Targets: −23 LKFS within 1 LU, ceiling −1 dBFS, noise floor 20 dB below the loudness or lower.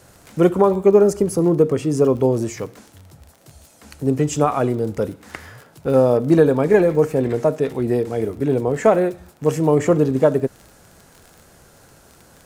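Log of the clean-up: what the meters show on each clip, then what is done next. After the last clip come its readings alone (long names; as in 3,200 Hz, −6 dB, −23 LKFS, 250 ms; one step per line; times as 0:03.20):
crackle rate 31 per second; integrated loudness −18.0 LKFS; sample peak −2.0 dBFS; target loudness −23.0 LKFS
→ click removal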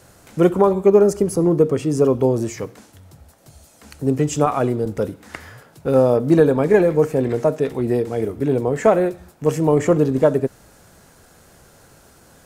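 crackle rate 0.16 per second; integrated loudness −18.0 LKFS; sample peak −2.0 dBFS; target loudness −23.0 LKFS
→ level −5 dB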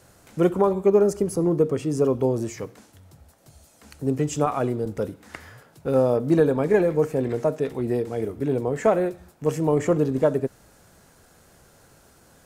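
integrated loudness −23.0 LKFS; sample peak −7.0 dBFS; background noise floor −56 dBFS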